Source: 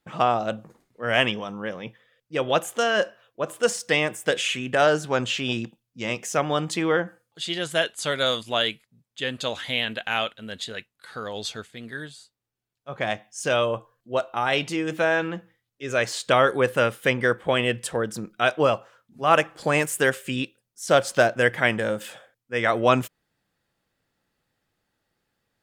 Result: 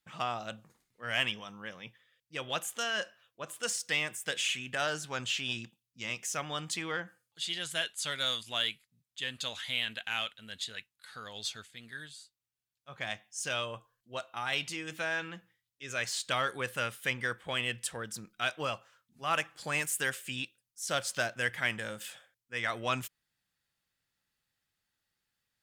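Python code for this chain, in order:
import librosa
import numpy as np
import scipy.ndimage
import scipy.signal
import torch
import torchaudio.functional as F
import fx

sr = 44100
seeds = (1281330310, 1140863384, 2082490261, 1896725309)

p1 = fx.tone_stack(x, sr, knobs='5-5-5')
p2 = 10.0 ** (-32.5 / 20.0) * np.tanh(p1 / 10.0 ** (-32.5 / 20.0))
y = p1 + F.gain(torch.from_numpy(p2), -6.5).numpy()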